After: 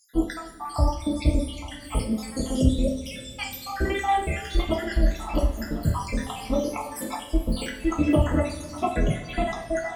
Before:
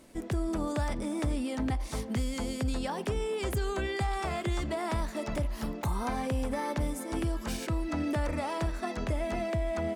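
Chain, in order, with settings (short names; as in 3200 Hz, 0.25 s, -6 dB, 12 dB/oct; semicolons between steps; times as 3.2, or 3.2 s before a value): random spectral dropouts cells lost 78%; two-slope reverb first 0.43 s, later 3.4 s, from -18 dB, DRR -1.5 dB; gain +8.5 dB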